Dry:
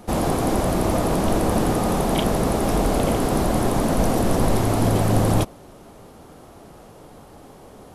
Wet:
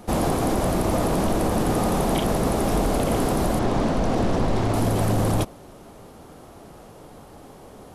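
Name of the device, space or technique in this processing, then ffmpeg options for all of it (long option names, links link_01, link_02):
soft clipper into limiter: -filter_complex "[0:a]asettb=1/sr,asplit=3[link_01][link_02][link_03];[link_01]atrim=end=3.594[link_04];[link_02]atrim=start=3.59:end=4.74,asetpts=PTS-STARTPTS,afade=type=in:duration=0.004:curve=qsin,afade=type=out:start_time=1.146:duration=0.004:curve=qsin,lowpass=5400[link_05];[link_03]atrim=start=4.736[link_06];[link_04][link_05]acrossfade=duration=0.004:curve1=hsin:curve2=qsin[link_07];[link_07][link_06]acrossfade=duration=0.004:curve1=qsin:curve2=hsin,asoftclip=type=tanh:threshold=-7.5dB,alimiter=limit=-13.5dB:level=0:latency=1:release=38"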